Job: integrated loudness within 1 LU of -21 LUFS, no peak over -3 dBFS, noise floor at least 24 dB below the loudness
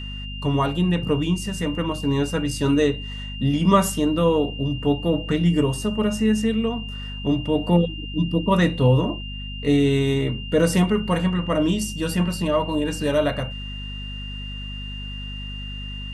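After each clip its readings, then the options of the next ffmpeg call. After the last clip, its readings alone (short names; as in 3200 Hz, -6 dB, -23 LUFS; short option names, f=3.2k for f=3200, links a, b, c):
hum 50 Hz; harmonics up to 250 Hz; hum level -31 dBFS; steady tone 2800 Hz; tone level -35 dBFS; loudness -22.0 LUFS; peak -5.0 dBFS; loudness target -21.0 LUFS
-> -af "bandreject=f=50:t=h:w=6,bandreject=f=100:t=h:w=6,bandreject=f=150:t=h:w=6,bandreject=f=200:t=h:w=6,bandreject=f=250:t=h:w=6"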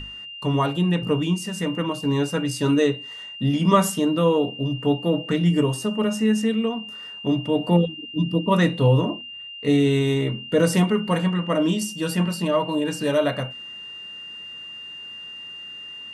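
hum none; steady tone 2800 Hz; tone level -35 dBFS
-> -af "bandreject=f=2.8k:w=30"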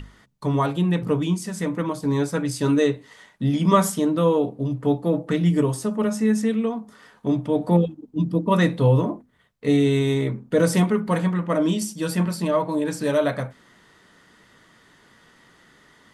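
steady tone none; loudness -22.5 LUFS; peak -5.5 dBFS; loudness target -21.0 LUFS
-> -af "volume=1.5dB"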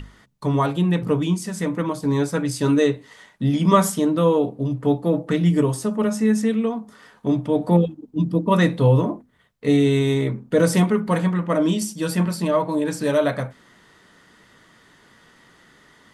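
loudness -21.0 LUFS; peak -4.0 dBFS; noise floor -55 dBFS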